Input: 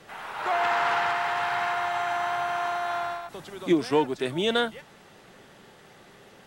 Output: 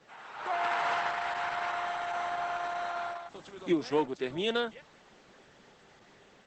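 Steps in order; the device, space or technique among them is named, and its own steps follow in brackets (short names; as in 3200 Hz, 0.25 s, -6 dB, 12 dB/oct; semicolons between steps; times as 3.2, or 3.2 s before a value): video call (HPF 140 Hz 6 dB/oct; AGC gain up to 4 dB; gain -8.5 dB; Opus 12 kbps 48000 Hz)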